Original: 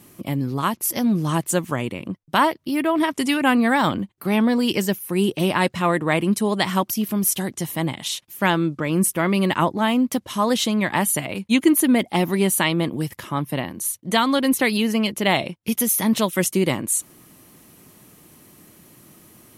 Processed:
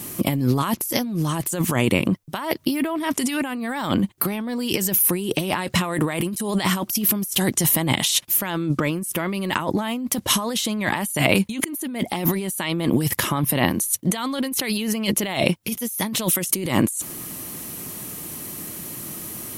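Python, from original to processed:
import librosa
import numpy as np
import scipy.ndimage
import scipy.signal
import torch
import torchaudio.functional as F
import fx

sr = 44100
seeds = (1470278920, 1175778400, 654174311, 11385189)

y = fx.high_shelf(x, sr, hz=8100.0, db=9.0, at=(5.84, 6.54))
y = fx.high_shelf(y, sr, hz=5600.0, db=8.0)
y = fx.over_compress(y, sr, threshold_db=-28.0, ratio=-1.0)
y = y * 10.0 ** (4.5 / 20.0)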